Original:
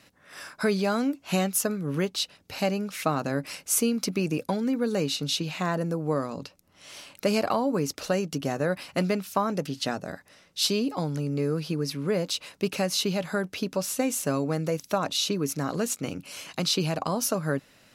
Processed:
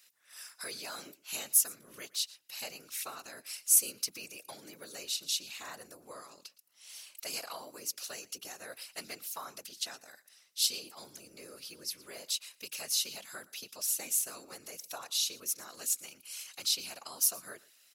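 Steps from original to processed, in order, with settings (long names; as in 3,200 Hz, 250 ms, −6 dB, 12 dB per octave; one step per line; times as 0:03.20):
random phases in short frames
first difference
single-tap delay 115 ms −21.5 dB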